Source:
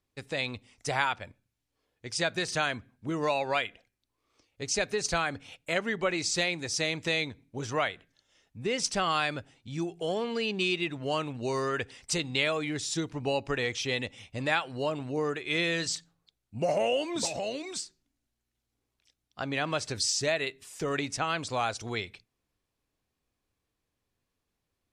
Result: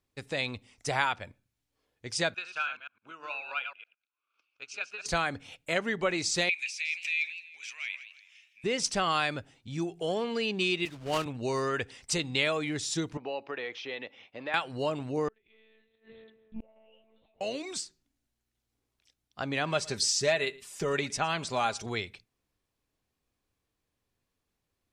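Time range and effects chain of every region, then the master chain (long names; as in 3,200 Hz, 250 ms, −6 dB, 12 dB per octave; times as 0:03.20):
0:02.34–0:05.06: delay that plays each chunk backwards 107 ms, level −6.5 dB + transient designer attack +7 dB, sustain +1 dB + pair of resonant band-passes 1,900 Hz, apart 0.82 octaves
0:06.49–0:08.64: downward compressor 12 to 1, threshold −38 dBFS + high-pass with resonance 2,400 Hz, resonance Q 12 + feedback echo with a swinging delay time 165 ms, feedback 36%, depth 165 cents, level −13 dB
0:10.85–0:11.26: one scale factor per block 3 bits + high-frequency loss of the air 51 metres + multiband upward and downward expander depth 100%
0:13.17–0:14.54: downward compressor 2 to 1, threshold −31 dBFS + band-pass filter 380–6,100 Hz + high-frequency loss of the air 230 metres
0:15.28–0:17.41: one-pitch LPC vocoder at 8 kHz 220 Hz + tape delay 241 ms, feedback 29%, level −7.5 dB, low-pass 1,200 Hz + gate with flip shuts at −30 dBFS, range −34 dB
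0:19.65–0:21.86: comb filter 5 ms, depth 47% + single-tap delay 113 ms −23.5 dB
whole clip: no processing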